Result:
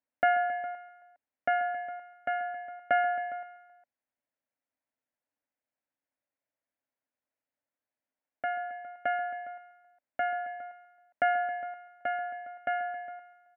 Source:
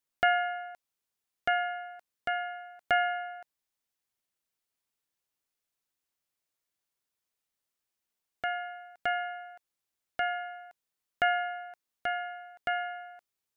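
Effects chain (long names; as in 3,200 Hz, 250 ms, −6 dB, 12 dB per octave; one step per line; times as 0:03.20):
loudspeaker in its box 100–2,100 Hz, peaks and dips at 100 Hz −3 dB, 170 Hz −10 dB, 270 Hz +8 dB, 380 Hz −10 dB, 590 Hz +7 dB, 1,200 Hz −7 dB
multi-tap delay 135/270/410 ms −15/−16/−17 dB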